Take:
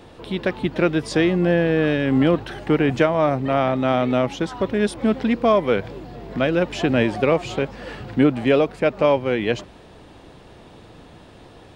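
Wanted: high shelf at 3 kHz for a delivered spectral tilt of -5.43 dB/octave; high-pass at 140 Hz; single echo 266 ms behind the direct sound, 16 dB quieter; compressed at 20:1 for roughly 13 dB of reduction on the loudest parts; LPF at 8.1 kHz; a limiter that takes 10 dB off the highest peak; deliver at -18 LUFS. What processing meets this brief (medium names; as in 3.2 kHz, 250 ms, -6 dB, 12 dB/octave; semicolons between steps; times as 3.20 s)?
high-pass 140 Hz; low-pass 8.1 kHz; treble shelf 3 kHz -8.5 dB; compression 20:1, threshold -25 dBFS; peak limiter -24 dBFS; delay 266 ms -16 dB; trim +16 dB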